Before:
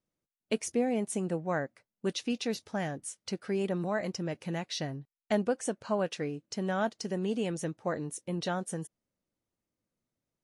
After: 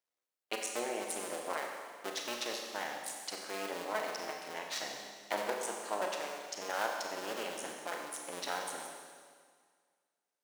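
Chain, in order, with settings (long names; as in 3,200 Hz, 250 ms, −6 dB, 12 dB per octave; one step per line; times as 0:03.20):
sub-harmonics by changed cycles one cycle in 2, muted
high-pass filter 640 Hz 12 dB per octave
four-comb reverb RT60 1.8 s, combs from 30 ms, DRR 1 dB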